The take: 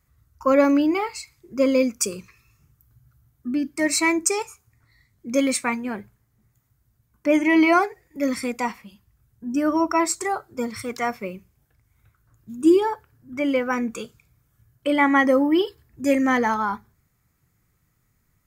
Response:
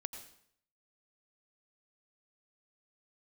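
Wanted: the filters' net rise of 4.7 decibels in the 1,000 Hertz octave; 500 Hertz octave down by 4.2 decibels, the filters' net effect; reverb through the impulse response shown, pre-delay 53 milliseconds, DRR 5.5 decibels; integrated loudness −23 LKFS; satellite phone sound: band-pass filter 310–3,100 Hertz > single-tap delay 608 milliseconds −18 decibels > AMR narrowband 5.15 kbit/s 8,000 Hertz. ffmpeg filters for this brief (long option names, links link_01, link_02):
-filter_complex "[0:a]equalizer=frequency=500:width_type=o:gain=-6.5,equalizer=frequency=1000:width_type=o:gain=7.5,asplit=2[link_01][link_02];[1:a]atrim=start_sample=2205,adelay=53[link_03];[link_02][link_03]afir=irnorm=-1:irlink=0,volume=-3.5dB[link_04];[link_01][link_04]amix=inputs=2:normalize=0,highpass=310,lowpass=3100,aecho=1:1:608:0.126" -ar 8000 -c:a libopencore_amrnb -b:a 5150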